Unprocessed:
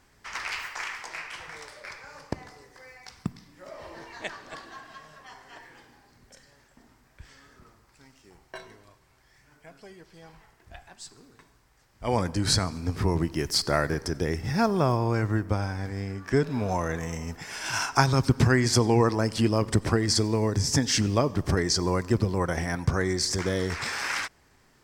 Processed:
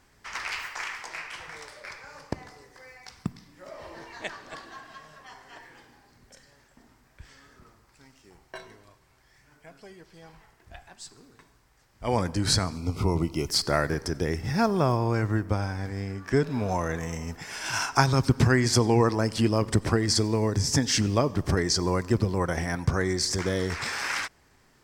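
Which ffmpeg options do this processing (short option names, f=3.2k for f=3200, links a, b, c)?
-filter_complex "[0:a]asettb=1/sr,asplit=3[a][b][c];[a]atrim=end=12.764[d];[b]atrim=start=12.76:end=13.49,asetpts=PTS-STARTPTS,afade=t=in:d=0.004:c=qsin,afade=t=out:st=0.726:d=0.004:c=qsin,asuperstop=centerf=1700:order=12:qfactor=3.3[e];[c]atrim=start=13.486[f];[d][e]acrossfade=d=0.004:c1=hsin:c2=qsin[g];[g][f]acrossfade=d=0.004:c1=qsin:c2=hsin"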